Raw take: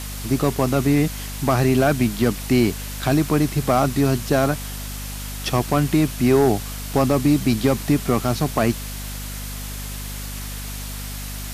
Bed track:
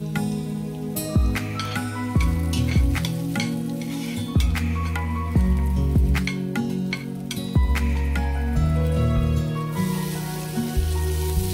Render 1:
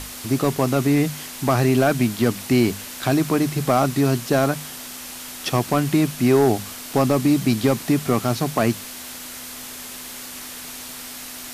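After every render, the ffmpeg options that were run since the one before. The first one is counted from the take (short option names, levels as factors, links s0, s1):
-af "bandreject=f=50:t=h:w=6,bandreject=f=100:t=h:w=6,bandreject=f=150:t=h:w=6,bandreject=f=200:t=h:w=6"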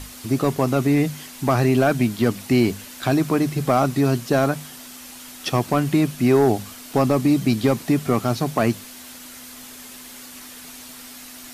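-af "afftdn=nr=6:nf=-36"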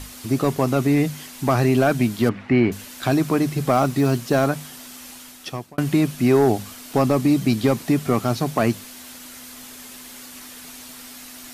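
-filter_complex "[0:a]asettb=1/sr,asplit=3[s0][s1][s2];[s0]atrim=end=2.294[s3];[s1]atrim=start=2.29:end=2.72,asetpts=PTS-STARTPTS,afade=t=in:d=0.004:c=qsin,afade=t=out:st=0.426:d=0.004:c=qsin,lowpass=f=1900:t=q:w=1.7[s4];[s2]atrim=start=2.716[s5];[s3][s4]acrossfade=d=0.004:c1=hsin:c2=qsin[s6];[s6][s5]acrossfade=d=0.004:c1=qsin:c2=hsin,asettb=1/sr,asplit=3[s7][s8][s9];[s7]atrim=end=3.744[s10];[s8]atrim=start=3.74:end=4.42,asetpts=PTS-STARTPTS,afade=t=in:d=0.004:c=qsin,afade=t=out:st=0.676:d=0.004:c=qsin,acrusher=bits=9:mode=log:mix=0:aa=0.000001[s11];[s9]atrim=start=4.416[s12];[s10][s11]acrossfade=d=0.004:c1=hsin:c2=qsin[s13];[s13][s12]acrossfade=d=0.004:c1=qsin:c2=hsin,asplit=2[s14][s15];[s14]atrim=end=5.78,asetpts=PTS-STARTPTS,afade=t=out:st=5.11:d=0.67[s16];[s15]atrim=start=5.78,asetpts=PTS-STARTPTS,afade=t=in:d=0.004:c=hsin[s17];[s16][s17]concat=n=2:v=0:a=1"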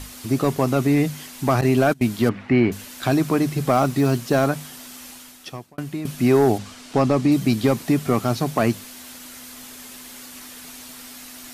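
-filter_complex "[0:a]asettb=1/sr,asplit=3[s0][s1][s2];[s0]atrim=end=1.614[s3];[s1]atrim=start=1.61:end=2.03,asetpts=PTS-STARTPTS,afade=t=in:d=0.004:c=qsin,afade=t=out:st=0.416:d=0.004:c=qsin,agate=range=0.0708:threshold=0.1:ratio=16:release=100:detection=peak[s4];[s2]atrim=start=2.026[s5];[s3][s4]acrossfade=d=0.004:c1=hsin:c2=qsin[s6];[s6][s5]acrossfade=d=0.004:c1=qsin:c2=hsin,asettb=1/sr,asplit=3[s7][s8][s9];[s7]atrim=end=6.584[s10];[s8]atrim=start=6.58:end=7.32,asetpts=PTS-STARTPTS,afade=t=in:d=0.004:c=qsin,afade=t=out:st=0.736:d=0.004:c=qsin,lowpass=7100[s11];[s9]atrim=start=7.316[s12];[s10][s11]acrossfade=d=0.004:c1=hsin:c2=qsin[s13];[s13][s12]acrossfade=d=0.004:c1=qsin:c2=hsin,asplit=2[s14][s15];[s14]atrim=end=6.05,asetpts=PTS-STARTPTS,afade=t=out:st=5.04:d=1.01:silence=0.223872[s16];[s15]atrim=start=6.05,asetpts=PTS-STARTPTS,afade=t=in:d=0.004:c=hsin:silence=0.223872[s17];[s16][s17]concat=n=2:v=0:a=1"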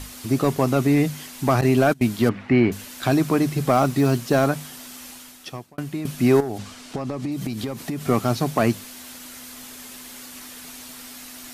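-filter_complex "[0:a]asettb=1/sr,asplit=3[s0][s1][s2];[s0]atrim=end=6.404[s3];[s1]atrim=start=6.4:end=8.04,asetpts=PTS-STARTPTS,afade=t=in:d=0.004:c=qsin,afade=t=out:st=1.636:d=0.004:c=qsin,acompressor=threshold=0.0708:ratio=16:attack=3.2:release=140:knee=1:detection=peak[s4];[s2]atrim=start=8.036[s5];[s3][s4]acrossfade=d=0.004:c1=hsin:c2=qsin[s6];[s6][s5]acrossfade=d=0.004:c1=qsin:c2=hsin"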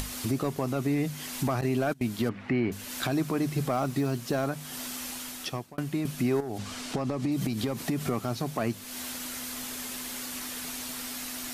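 -af "alimiter=limit=0.119:level=0:latency=1:release=349,acompressor=mode=upward:threshold=0.0282:ratio=2.5"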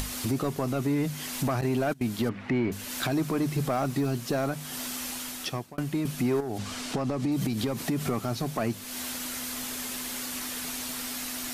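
-af "aeval=exprs='0.141*(cos(1*acos(clip(val(0)/0.141,-1,1)))-cos(1*PI/2))+0.00891*(cos(5*acos(clip(val(0)/0.141,-1,1)))-cos(5*PI/2))':c=same"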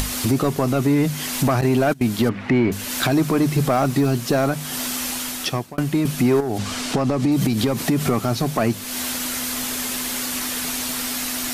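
-af "volume=2.82"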